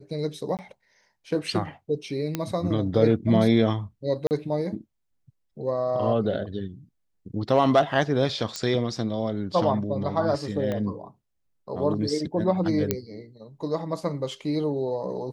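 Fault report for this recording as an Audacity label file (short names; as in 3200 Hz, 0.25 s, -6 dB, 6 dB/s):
0.570000	0.590000	gap 18 ms
2.350000	2.350000	pop -12 dBFS
4.270000	4.310000	gap 39 ms
8.560000	8.560000	pop -15 dBFS
10.720000	10.720000	pop -17 dBFS
12.910000	12.910000	pop -8 dBFS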